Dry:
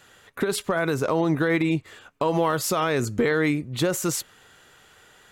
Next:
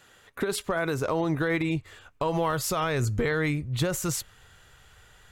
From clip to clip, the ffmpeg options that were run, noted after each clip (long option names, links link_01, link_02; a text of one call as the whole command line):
ffmpeg -i in.wav -af "asubboost=boost=9:cutoff=92,volume=-3dB" out.wav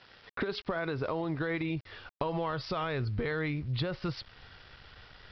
ffmpeg -i in.wav -af "acompressor=threshold=-34dB:ratio=4,aresample=11025,aeval=exprs='val(0)*gte(abs(val(0)),0.00188)':channel_layout=same,aresample=44100,volume=3dB" out.wav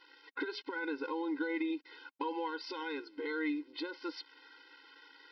ffmpeg -i in.wav -af "lowshelf=frequency=300:width_type=q:width=3:gain=8.5,afftfilt=real='re*eq(mod(floor(b*sr/1024/270),2),1)':imag='im*eq(mod(floor(b*sr/1024/270),2),1)':win_size=1024:overlap=0.75" out.wav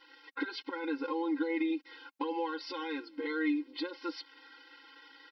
ffmpeg -i in.wav -af "aecho=1:1:3.7:0.8" out.wav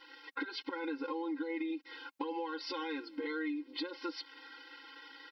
ffmpeg -i in.wav -af "acompressor=threshold=-39dB:ratio=4,volume=3dB" out.wav